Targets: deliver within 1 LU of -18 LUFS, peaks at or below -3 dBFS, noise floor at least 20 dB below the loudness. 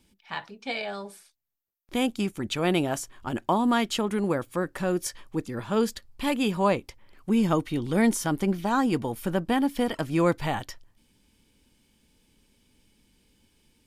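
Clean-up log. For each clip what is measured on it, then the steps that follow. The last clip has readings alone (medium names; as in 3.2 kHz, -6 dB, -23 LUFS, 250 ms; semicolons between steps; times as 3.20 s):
loudness -27.0 LUFS; peak level -10.5 dBFS; loudness target -18.0 LUFS
-> trim +9 dB; peak limiter -3 dBFS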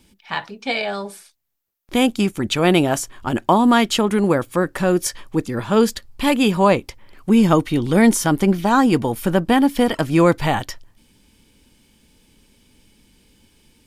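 loudness -18.5 LUFS; peak level -3.0 dBFS; noise floor -58 dBFS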